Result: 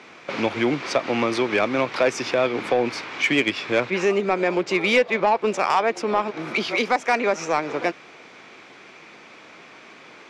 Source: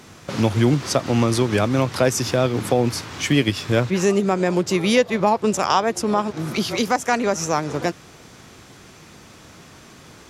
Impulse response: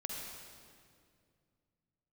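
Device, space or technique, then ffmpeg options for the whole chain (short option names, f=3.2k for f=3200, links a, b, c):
intercom: -af "highpass=340,lowpass=3.6k,equalizer=f=2.3k:t=o:w=0.29:g=8.5,asoftclip=type=tanh:threshold=-11.5dB,volume=1.5dB"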